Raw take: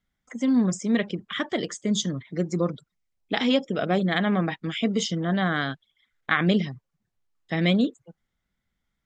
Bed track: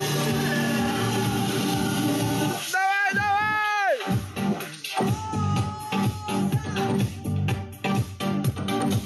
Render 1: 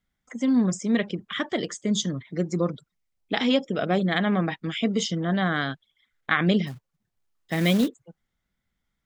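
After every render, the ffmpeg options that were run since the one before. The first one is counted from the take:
-filter_complex "[0:a]asplit=3[a][b][c];[a]afade=t=out:st=6.66:d=0.02[d];[b]acrusher=bits=4:mode=log:mix=0:aa=0.000001,afade=t=in:st=6.66:d=0.02,afade=t=out:st=7.87:d=0.02[e];[c]afade=t=in:st=7.87:d=0.02[f];[d][e][f]amix=inputs=3:normalize=0"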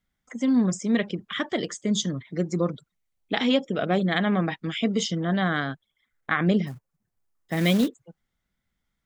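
-filter_complex "[0:a]asettb=1/sr,asplit=3[a][b][c];[a]atrim=end=2.544[d];[b]atrim=start=2.54:end=4.42,asetpts=PTS-STARTPTS,afade=t=in:d=0.004:c=qsin,afade=t=out:st=1.876:d=0.004:c=qsin,bandreject=f=5.1k:w=9.5[e];[c]atrim=start=4.416[f];[d][e]acrossfade=d=0.004:c1=hsin:c2=qsin[g];[g][f]acrossfade=d=0.004:c1=qsin:c2=hsin,asettb=1/sr,asplit=3[h][i][j];[h]atrim=end=5.604[k];[i]atrim=start=5.6:end=7.57,asetpts=PTS-STARTPTS,afade=t=in:d=0.004:c=qsin,afade=t=out:st=1.966:d=0.004:c=qsin,equalizer=f=3.5k:w=0.97:g=-7.5[l];[j]atrim=start=7.566[m];[k][l]acrossfade=d=0.004:c1=hsin:c2=qsin[n];[n][m]acrossfade=d=0.004:c1=qsin:c2=hsin"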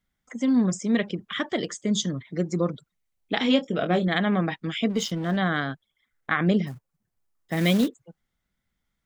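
-filter_complex "[0:a]asettb=1/sr,asplit=3[a][b][c];[a]atrim=end=3.434[d];[b]atrim=start=3.43:end=4.08,asetpts=PTS-STARTPTS,afade=t=in:d=0.004:c=qsin,afade=t=out:st=0.646:d=0.004:c=qsin,asplit=2[e][f];[f]adelay=23,volume=-8dB[g];[e][g]amix=inputs=2:normalize=0,atrim=end_sample=28665[h];[c]atrim=start=4.076[i];[d][h]acrossfade=d=0.004:c1=hsin:c2=qsin[j];[j][i]acrossfade=d=0.004:c1=qsin:c2=hsin,asplit=3[k][l][m];[k]afade=t=out:st=4.89:d=0.02[n];[l]aeval=exprs='sgn(val(0))*max(abs(val(0))-0.00794,0)':c=same,afade=t=in:st=4.89:d=0.02,afade=t=out:st=5.36:d=0.02[o];[m]afade=t=in:st=5.36:d=0.02[p];[n][o][p]amix=inputs=3:normalize=0"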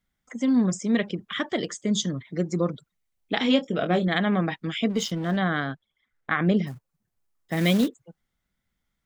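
-filter_complex "[0:a]asettb=1/sr,asplit=3[a][b][c];[a]atrim=end=5.394[d];[b]atrim=start=5.39:end=6.57,asetpts=PTS-STARTPTS,afade=t=in:d=0.004:c=qsin,afade=t=out:st=1.176:d=0.004:c=qsin,lowpass=f=3.9k:p=1[e];[c]atrim=start=6.566[f];[d][e]acrossfade=d=0.004:c1=hsin:c2=qsin[g];[g][f]acrossfade=d=0.004:c1=qsin:c2=hsin"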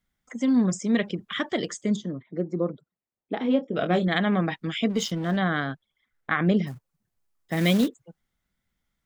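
-filter_complex "[0:a]asplit=3[a][b][c];[a]afade=t=out:st=1.95:d=0.02[d];[b]bandpass=f=400:t=q:w=0.7,afade=t=in:st=1.95:d=0.02,afade=t=out:st=3.75:d=0.02[e];[c]afade=t=in:st=3.75:d=0.02[f];[d][e][f]amix=inputs=3:normalize=0"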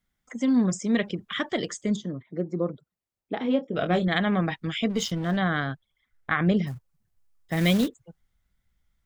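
-af "asubboost=boost=3:cutoff=120"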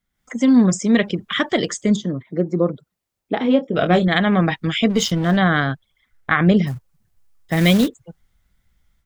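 -af "dynaudnorm=f=120:g=3:m=9dB"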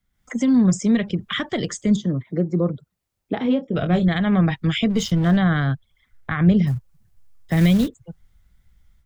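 -filter_complex "[0:a]acrossover=split=150[a][b];[a]acontrast=79[c];[b]alimiter=limit=-14dB:level=0:latency=1:release=430[d];[c][d]amix=inputs=2:normalize=0"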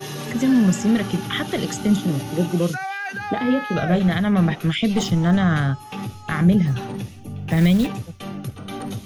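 -filter_complex "[1:a]volume=-6dB[a];[0:a][a]amix=inputs=2:normalize=0"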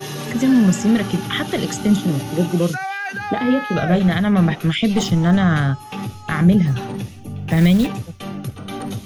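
-af "volume=2.5dB"

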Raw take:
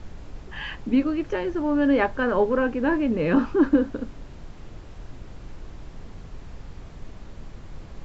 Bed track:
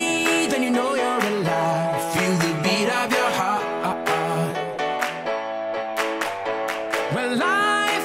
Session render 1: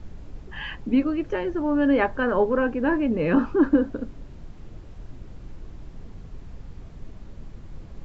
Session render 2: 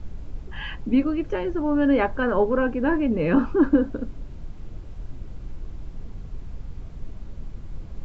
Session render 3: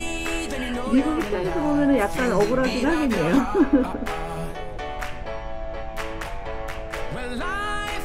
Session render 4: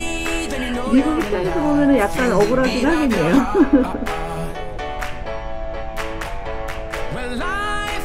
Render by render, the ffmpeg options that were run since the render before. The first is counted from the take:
-af "afftdn=nr=6:nf=-43"
-af "lowshelf=f=98:g=6,bandreject=f=1.8k:w=23"
-filter_complex "[1:a]volume=-8dB[a];[0:a][a]amix=inputs=2:normalize=0"
-af "volume=4.5dB"

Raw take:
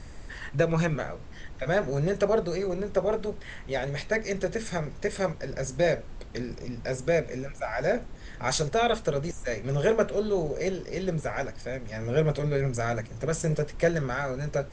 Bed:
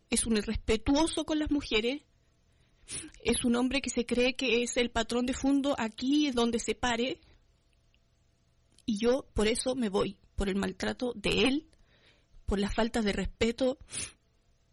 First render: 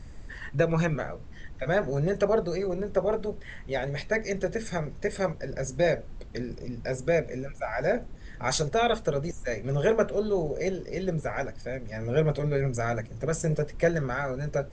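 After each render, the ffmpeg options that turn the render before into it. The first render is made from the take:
-af "afftdn=nr=6:nf=-43"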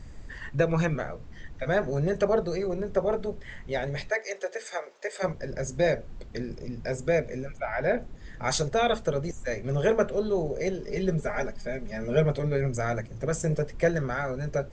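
-filter_complex "[0:a]asplit=3[a][b][c];[a]afade=t=out:st=4.09:d=0.02[d];[b]highpass=f=480:w=0.5412,highpass=f=480:w=1.3066,afade=t=in:st=4.09:d=0.02,afade=t=out:st=5.22:d=0.02[e];[c]afade=t=in:st=5.22:d=0.02[f];[d][e][f]amix=inputs=3:normalize=0,asettb=1/sr,asplit=3[g][h][i];[g]atrim=end=7.574[j];[h]atrim=start=7.57:end=7.99,asetpts=PTS-STARTPTS,afade=t=in:d=0.004:c=qsin,afade=t=out:st=0.416:d=0.004:c=qsin,highshelf=f=5k:t=q:w=1.5:g=-13[k];[i]atrim=start=7.986[l];[j][k]acrossfade=d=0.004:c1=hsin:c2=qsin[m];[m][l]acrossfade=d=0.004:c1=qsin:c2=hsin,asettb=1/sr,asplit=3[n][o][p];[n]atrim=end=10.824[q];[o]atrim=start=10.82:end=12.25,asetpts=PTS-STARTPTS,afade=t=in:d=0.004:c=qsin,afade=t=out:st=1.426:d=0.004:c=qsin,aecho=1:1:4.9:0.69,atrim=end_sample=63063[r];[p]atrim=start=12.246[s];[q][r]acrossfade=d=0.004:c1=hsin:c2=qsin[t];[t][s]acrossfade=d=0.004:c1=qsin:c2=hsin"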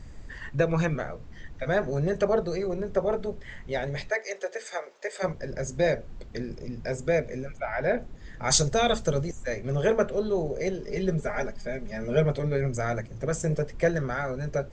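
-filter_complex "[0:a]asettb=1/sr,asplit=3[a][b][c];[a]atrim=end=8.504[d];[b]atrim=start=8.5:end=9.24,asetpts=PTS-STARTPTS,afade=t=in:d=0.004:c=qsin,afade=t=out:st=0.736:d=0.004:c=qsin,bass=f=250:g=5,treble=f=4k:g=10[e];[c]atrim=start=9.236[f];[d][e]acrossfade=d=0.004:c1=hsin:c2=qsin[g];[g][f]acrossfade=d=0.004:c1=qsin:c2=hsin"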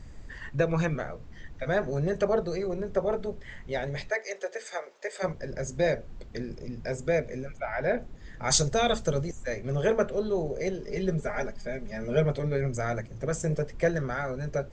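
-af "volume=-1.5dB"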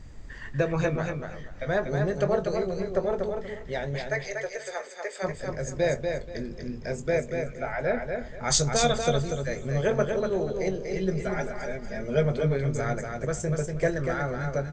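-filter_complex "[0:a]asplit=2[a][b];[b]adelay=21,volume=-11dB[c];[a][c]amix=inputs=2:normalize=0,aecho=1:1:240|480|720:0.562|0.135|0.0324"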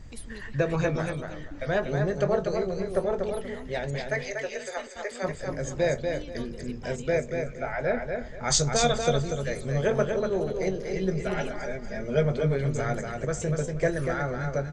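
-filter_complex "[1:a]volume=-16dB[a];[0:a][a]amix=inputs=2:normalize=0"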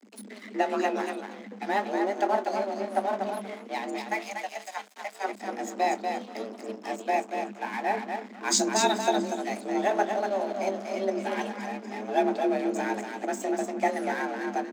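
-af "aeval=exprs='sgn(val(0))*max(abs(val(0))-0.00891,0)':c=same,afreqshift=200"

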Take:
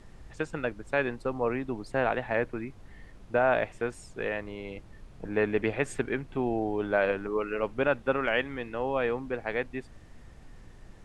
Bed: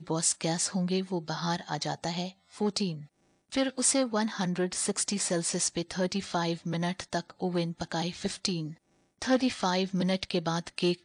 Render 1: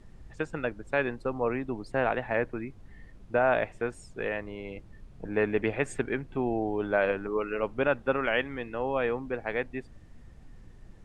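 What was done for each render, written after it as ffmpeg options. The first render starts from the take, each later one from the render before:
-af "afftdn=nr=6:nf=-51"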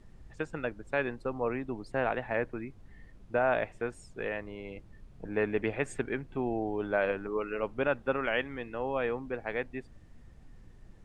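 -af "volume=-3dB"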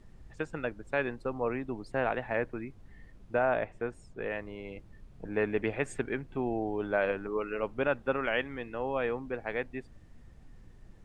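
-filter_complex "[0:a]asettb=1/sr,asplit=3[a][b][c];[a]atrim=end=3.454[d];[b]atrim=start=3.45:end=4.3,asetpts=PTS-STARTPTS,afade=t=in:d=0.004:c=qsin,afade=t=out:st=0.846:d=0.004:c=qsin,highshelf=f=2.7k:g=-8.5[e];[c]atrim=start=4.296[f];[d][e]acrossfade=d=0.004:c1=hsin:c2=qsin[g];[g][f]acrossfade=d=0.004:c1=qsin:c2=hsin"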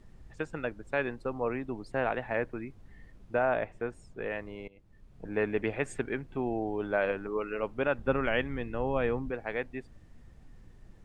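-filter_complex "[0:a]asettb=1/sr,asplit=3[a][b][c];[a]atrim=end=7.984[d];[b]atrim=start=7.98:end=9.31,asetpts=PTS-STARTPTS,afade=t=in:d=0.004:c=qsin,afade=t=out:st=1.326:d=0.004:c=qsin,lowshelf=f=210:g=11.5[e];[c]atrim=start=9.306[f];[d][e]acrossfade=d=0.004:c1=hsin:c2=qsin[g];[g][f]acrossfade=d=0.004:c1=qsin:c2=hsin,asplit=2[h][i];[h]atrim=end=4.68,asetpts=PTS-STARTPTS,afade=t=out:st=4.676:d=0.004:c=hsin:silence=0.0891251[j];[i]atrim=start=4.68,asetpts=PTS-STARTPTS,afade=t=in:d=0.62:silence=0.0891251[k];[j][k]concat=n=2:v=0:a=1"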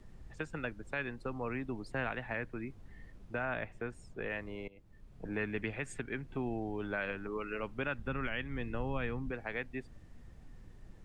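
-filter_complex "[0:a]acrossover=split=260|1200|3600[a][b][c][d];[b]acompressor=threshold=-41dB:ratio=6[e];[a][e][c][d]amix=inputs=4:normalize=0,alimiter=level_in=0.5dB:limit=-24dB:level=0:latency=1:release=324,volume=-0.5dB"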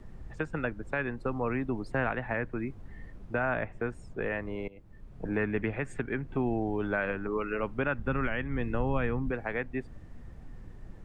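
-filter_complex "[0:a]acrossover=split=2100[a][b];[a]acontrast=88[c];[b]alimiter=level_in=16dB:limit=-24dB:level=0:latency=1:release=288,volume=-16dB[d];[c][d]amix=inputs=2:normalize=0"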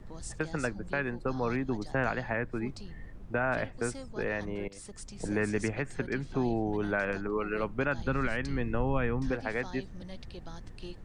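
-filter_complex "[1:a]volume=-17.5dB[a];[0:a][a]amix=inputs=2:normalize=0"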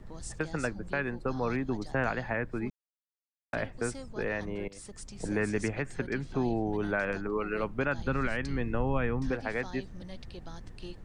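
-filter_complex "[0:a]asplit=3[a][b][c];[a]atrim=end=2.7,asetpts=PTS-STARTPTS,afade=t=out:st=2.696:d=0.004:c=hsin[d];[b]atrim=start=2.7:end=3.53,asetpts=PTS-STARTPTS,volume=0[e];[c]atrim=start=3.53,asetpts=PTS-STARTPTS,afade=t=in:d=0.004:c=hsin[f];[d][e][f]concat=n=3:v=0:a=1"

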